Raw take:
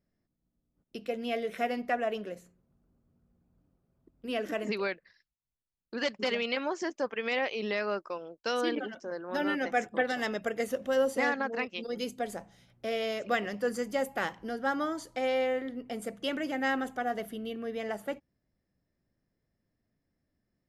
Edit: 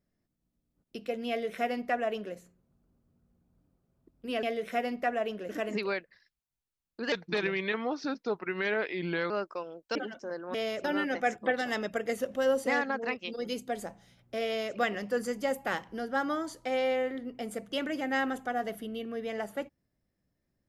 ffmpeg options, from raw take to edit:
-filter_complex "[0:a]asplit=8[a][b][c][d][e][f][g][h];[a]atrim=end=4.432[i];[b]atrim=start=1.288:end=2.352[j];[c]atrim=start=4.428:end=6.064[k];[d]atrim=start=6.06:end=7.85,asetpts=PTS-STARTPTS,asetrate=36162,aresample=44100,atrim=end_sample=96267,asetpts=PTS-STARTPTS[l];[e]atrim=start=7.846:end=8.502[m];[f]atrim=start=8.758:end=9.352[n];[g]atrim=start=12.968:end=13.272[o];[h]atrim=start=9.348[p];[i][j]acrossfade=d=0.004:c1=hsin:c2=hsin[q];[q][k]acrossfade=d=0.004:c1=hsin:c2=hsin[r];[r][l]acrossfade=d=0.004:c1=hsin:c2=hsin[s];[s][m]acrossfade=d=0.004:c1=hsin:c2=hsin[t];[t][n]acrossfade=d=0.004:c1=hsin:c2=hsin[u];[u][o]acrossfade=d=0.004:c1=hsin:c2=hsin[v];[v][p]acrossfade=d=0.004:c1=hsin:c2=hsin"

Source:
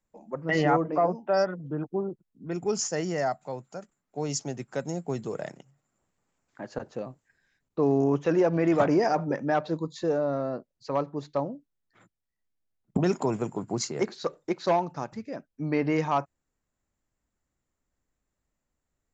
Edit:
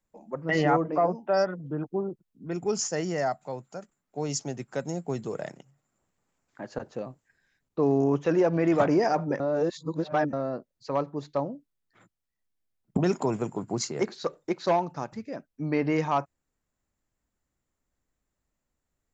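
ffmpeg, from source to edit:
-filter_complex "[0:a]asplit=3[a][b][c];[a]atrim=end=9.402[d];[b]atrim=start=9.398:end=10.332,asetpts=PTS-STARTPTS,areverse[e];[c]atrim=start=10.328[f];[d][e]acrossfade=d=0.004:c1=hsin:c2=hsin[g];[g][f]acrossfade=d=0.004:c1=hsin:c2=hsin"

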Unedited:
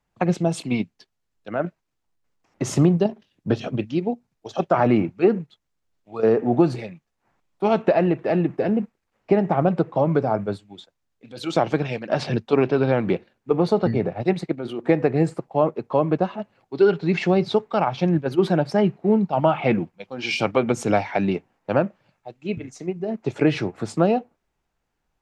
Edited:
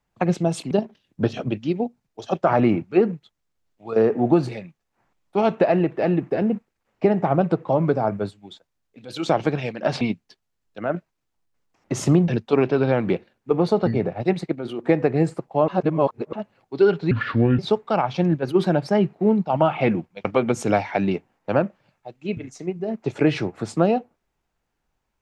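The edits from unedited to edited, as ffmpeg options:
-filter_complex "[0:a]asplit=9[a][b][c][d][e][f][g][h][i];[a]atrim=end=0.712[j];[b]atrim=start=2.978:end=12.282[k];[c]atrim=start=0.708:end=2.982[l];[d]atrim=start=12.278:end=15.682[m];[e]atrim=start=15.678:end=16.332,asetpts=PTS-STARTPTS,areverse[n];[f]atrim=start=16.328:end=17.114[o];[g]atrim=start=17.11:end=17.42,asetpts=PTS-STARTPTS,asetrate=28665,aresample=44100,atrim=end_sample=21032,asetpts=PTS-STARTPTS[p];[h]atrim=start=17.416:end=20.082[q];[i]atrim=start=20.448[r];[j][k]acrossfade=d=0.004:c1=hsin:c2=hsin[s];[s][l]acrossfade=d=0.004:c1=hsin:c2=hsin[t];[t][m]acrossfade=d=0.004:c1=hsin:c2=hsin[u];[u][n]acrossfade=d=0.004:c1=hsin:c2=hsin[v];[v][o]acrossfade=d=0.004:c1=hsin:c2=hsin[w];[w][p]acrossfade=d=0.004:c1=hsin:c2=hsin[x];[x][q]acrossfade=d=0.004:c1=hsin:c2=hsin[y];[y][r]acrossfade=d=0.004:c1=hsin:c2=hsin"

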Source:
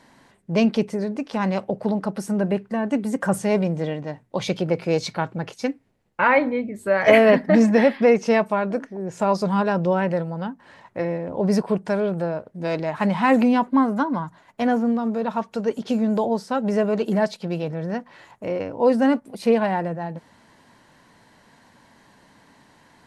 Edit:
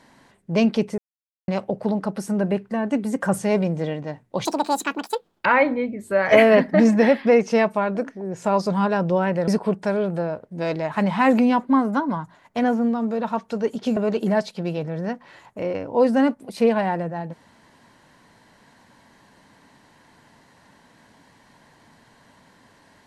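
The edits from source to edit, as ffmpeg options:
-filter_complex "[0:a]asplit=7[a][b][c][d][e][f][g];[a]atrim=end=0.98,asetpts=PTS-STARTPTS,afade=t=out:st=0.976:d=0.004:c=hsin[h];[b]atrim=start=0.98:end=1.48,asetpts=PTS-STARTPTS,volume=0[i];[c]atrim=start=1.48:end=4.454,asetpts=PTS-STARTPTS,afade=t=in:d=0.004:c=hsin[j];[d]atrim=start=4.45:end=6.21,asetpts=PTS-STARTPTS,asetrate=77175,aresample=44100[k];[e]atrim=start=6.206:end=10.232[l];[f]atrim=start=11.508:end=16.002[m];[g]atrim=start=16.818[n];[h][i][j]concat=n=3:v=0:a=1[o];[o][k]acrossfade=d=0.004:c1=hsin:c2=hsin[p];[p][l]acrossfade=d=0.004:c1=hsin:c2=hsin[q];[q][m]acrossfade=d=0.004:c1=hsin:c2=hsin[r];[r][n]acrossfade=d=0.004:c1=hsin:c2=hsin"

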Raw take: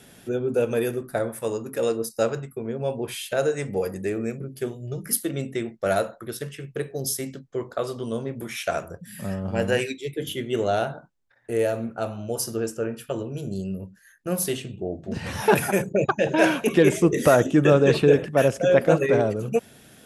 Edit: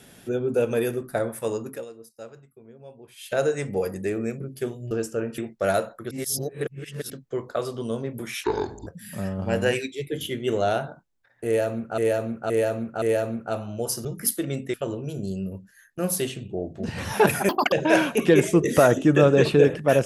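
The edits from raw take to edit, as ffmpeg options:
-filter_complex "[0:a]asplit=16[a][b][c][d][e][f][g][h][i][j][k][l][m][n][o][p];[a]atrim=end=1.85,asetpts=PTS-STARTPTS,afade=t=out:st=1.67:d=0.18:silence=0.125893[q];[b]atrim=start=1.85:end=3.16,asetpts=PTS-STARTPTS,volume=-18dB[r];[c]atrim=start=3.16:end=4.912,asetpts=PTS-STARTPTS,afade=t=in:d=0.18:silence=0.125893[s];[d]atrim=start=12.548:end=13.022[t];[e]atrim=start=5.598:end=6.332[u];[f]atrim=start=6.328:end=7.322,asetpts=PTS-STARTPTS,areverse[v];[g]atrim=start=7.318:end=8.664[w];[h]atrim=start=8.66:end=8.93,asetpts=PTS-STARTPTS,asetrate=27783,aresample=44100[x];[i]atrim=start=8.926:end=12.042[y];[j]atrim=start=11.518:end=12.042[z];[k]atrim=start=11.518:end=12.042[aa];[l]atrim=start=11.518:end=12.552[ab];[m]atrim=start=4.908:end=5.602[ac];[n]atrim=start=13.018:end=15.774[ad];[o]atrim=start=15.77:end=16.21,asetpts=PTS-STARTPTS,asetrate=82908,aresample=44100,atrim=end_sample=10321,asetpts=PTS-STARTPTS[ae];[p]atrim=start=16.206[af];[q][r][s]concat=n=3:v=0:a=1[ag];[ag][t]acrossfade=d=0.004:c1=hsin:c2=hsin[ah];[ah][u]acrossfade=d=0.004:c1=hsin:c2=hsin[ai];[ai][v]acrossfade=d=0.004:c1=hsin:c2=hsin[aj];[aj][w]acrossfade=d=0.004:c1=hsin:c2=hsin[ak];[ak][x]acrossfade=d=0.004:c1=hsin:c2=hsin[al];[al][y]acrossfade=d=0.004:c1=hsin:c2=hsin[am];[am][z]acrossfade=d=0.004:c1=hsin:c2=hsin[an];[an][aa]acrossfade=d=0.004:c1=hsin:c2=hsin[ao];[ao][ab]acrossfade=d=0.004:c1=hsin:c2=hsin[ap];[ap][ac]acrossfade=d=0.004:c1=hsin:c2=hsin[aq];[aq][ad]acrossfade=d=0.004:c1=hsin:c2=hsin[ar];[ar][ae]acrossfade=d=0.004:c1=hsin:c2=hsin[as];[as][af]acrossfade=d=0.004:c1=hsin:c2=hsin"

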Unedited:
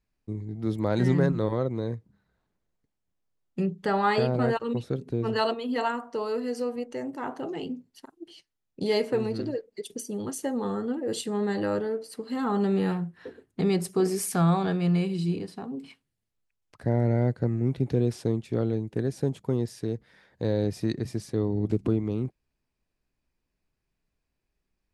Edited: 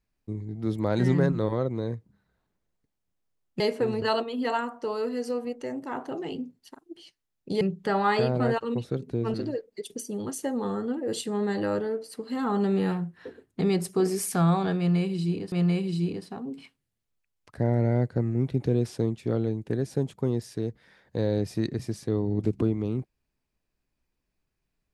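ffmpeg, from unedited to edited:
-filter_complex "[0:a]asplit=6[a][b][c][d][e][f];[a]atrim=end=3.602[g];[b]atrim=start=8.918:end=9.342[h];[c]atrim=start=5.328:end=8.922[i];[d]atrim=start=3.598:end=5.332[j];[e]atrim=start=9.338:end=15.522[k];[f]atrim=start=14.778[l];[g][h]acrossfade=d=0.004:c1=hsin:c2=hsin[m];[m][i]acrossfade=d=0.004:c1=hsin:c2=hsin[n];[n][j]acrossfade=d=0.004:c1=hsin:c2=hsin[o];[o][k]acrossfade=d=0.004:c1=hsin:c2=hsin[p];[p][l]acrossfade=d=0.004:c1=hsin:c2=hsin"

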